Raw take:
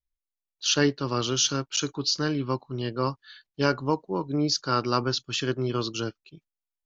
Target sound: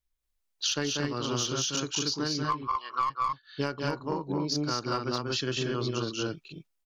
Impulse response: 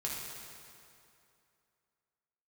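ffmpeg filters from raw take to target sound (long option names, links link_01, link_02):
-filter_complex "[0:a]asettb=1/sr,asplit=3[link_01][link_02][link_03];[link_01]atrim=end=2.444[link_04];[link_02]atrim=start=2.44:end=3.1,asetpts=PTS-STARTPTS,afade=type=in:duration=0.004:curve=qsin,afade=type=out:start_time=0.656:duration=0.004:curve=qsin,highpass=frequency=1100:width_type=q:width=11[link_05];[link_03]atrim=start=3.096[link_06];[link_04][link_05]acrossfade=duration=0.004:curve1=hsin:curve2=qsin[link_07];[link_07][link_06]acrossfade=duration=0.004:curve1=qsin:curve2=hsin,aecho=1:1:189.5|230.3:0.631|0.794,aeval=exprs='0.596*(cos(1*acos(clip(val(0)/0.596,-1,1)))-cos(1*PI/2))+0.0299*(cos(3*acos(clip(val(0)/0.596,-1,1)))-cos(3*PI/2))+0.0376*(cos(6*acos(clip(val(0)/0.596,-1,1)))-cos(6*PI/2))+0.00531*(cos(7*acos(clip(val(0)/0.596,-1,1)))-cos(7*PI/2))+0.0237*(cos(8*acos(clip(val(0)/0.596,-1,1)))-cos(8*PI/2))':channel_layout=same,acompressor=threshold=-34dB:ratio=8,volume=7dB"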